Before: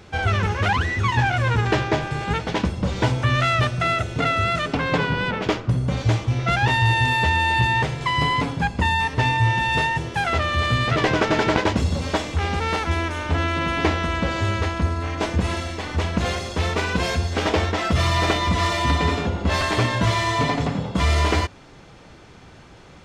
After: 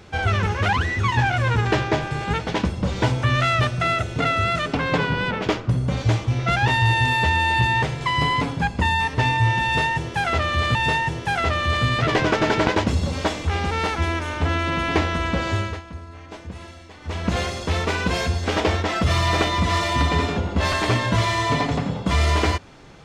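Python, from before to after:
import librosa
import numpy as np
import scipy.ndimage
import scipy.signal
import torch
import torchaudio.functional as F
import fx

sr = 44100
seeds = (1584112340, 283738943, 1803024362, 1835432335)

y = fx.edit(x, sr, fx.repeat(start_s=9.64, length_s=1.11, count=2),
    fx.fade_down_up(start_s=14.43, length_s=1.75, db=-14.0, fade_s=0.28), tone=tone)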